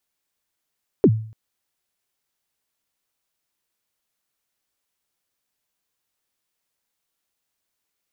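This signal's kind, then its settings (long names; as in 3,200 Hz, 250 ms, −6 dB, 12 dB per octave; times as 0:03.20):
synth kick length 0.29 s, from 470 Hz, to 110 Hz, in 58 ms, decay 0.49 s, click off, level −7 dB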